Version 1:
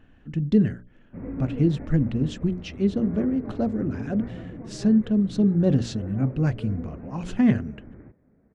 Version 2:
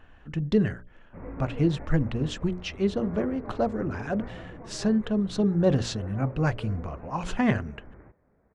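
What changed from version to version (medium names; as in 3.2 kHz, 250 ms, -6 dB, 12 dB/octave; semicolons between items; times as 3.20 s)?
speech +3.5 dB; master: add ten-band graphic EQ 125 Hz -5 dB, 250 Hz -9 dB, 1 kHz +6 dB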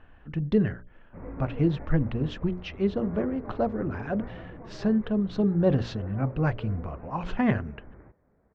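master: add distance through air 230 m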